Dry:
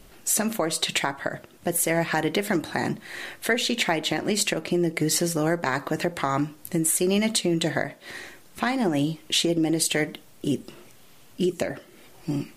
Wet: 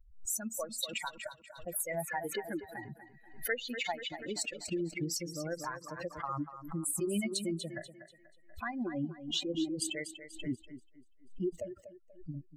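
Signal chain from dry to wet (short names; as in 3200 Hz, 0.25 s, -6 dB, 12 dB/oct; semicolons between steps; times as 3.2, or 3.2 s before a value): per-bin expansion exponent 3; in parallel at -2.5 dB: compressor, threshold -37 dBFS, peak gain reduction 15 dB; on the sum: thinning echo 0.242 s, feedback 35%, high-pass 190 Hz, level -11 dB; backwards sustainer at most 110 dB/s; gain -8 dB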